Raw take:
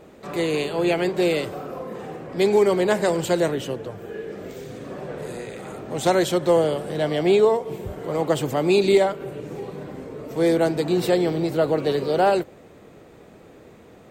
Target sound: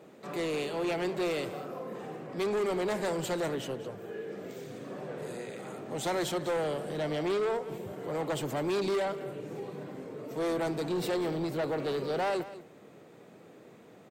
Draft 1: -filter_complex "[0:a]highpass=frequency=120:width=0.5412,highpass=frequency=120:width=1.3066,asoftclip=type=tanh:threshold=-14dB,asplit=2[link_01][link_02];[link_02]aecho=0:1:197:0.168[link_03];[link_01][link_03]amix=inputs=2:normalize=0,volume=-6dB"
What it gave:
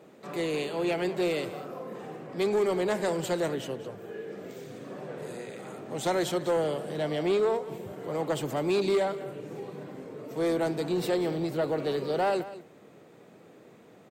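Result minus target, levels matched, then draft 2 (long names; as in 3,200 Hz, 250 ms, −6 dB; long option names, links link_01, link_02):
soft clipping: distortion −7 dB
-filter_complex "[0:a]highpass=frequency=120:width=0.5412,highpass=frequency=120:width=1.3066,asoftclip=type=tanh:threshold=-21dB,asplit=2[link_01][link_02];[link_02]aecho=0:1:197:0.168[link_03];[link_01][link_03]amix=inputs=2:normalize=0,volume=-6dB"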